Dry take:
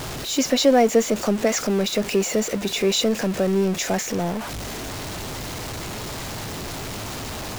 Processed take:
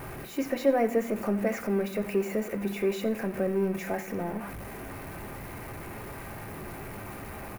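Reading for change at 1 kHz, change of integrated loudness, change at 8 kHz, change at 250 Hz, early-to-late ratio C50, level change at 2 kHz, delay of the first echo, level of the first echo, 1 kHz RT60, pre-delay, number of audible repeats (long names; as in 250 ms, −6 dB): −8.5 dB, −8.0 dB, −20.0 dB, −7.0 dB, 13.0 dB, −8.0 dB, 89 ms, −18.5 dB, 0.65 s, 3 ms, 1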